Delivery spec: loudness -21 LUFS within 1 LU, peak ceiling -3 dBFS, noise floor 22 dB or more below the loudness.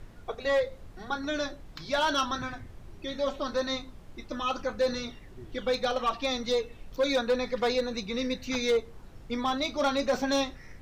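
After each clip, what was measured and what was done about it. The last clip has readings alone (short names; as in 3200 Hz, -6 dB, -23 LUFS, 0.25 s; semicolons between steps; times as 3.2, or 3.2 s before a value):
clipped 0.9%; flat tops at -20.0 dBFS; noise floor -48 dBFS; noise floor target -52 dBFS; loudness -30.0 LUFS; peak -20.0 dBFS; loudness target -21.0 LUFS
-> clip repair -20 dBFS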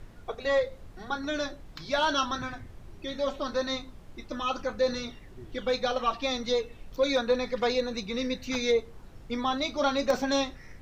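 clipped 0.0%; noise floor -48 dBFS; noise floor target -52 dBFS
-> noise print and reduce 6 dB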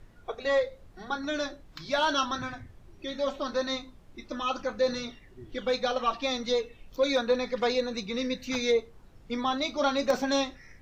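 noise floor -53 dBFS; loudness -29.5 LUFS; peak -12.0 dBFS; loudness target -21.0 LUFS
-> gain +8.5 dB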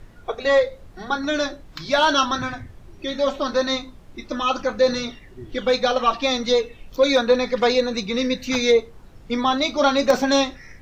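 loudness -21.0 LUFS; peak -3.5 dBFS; noise floor -45 dBFS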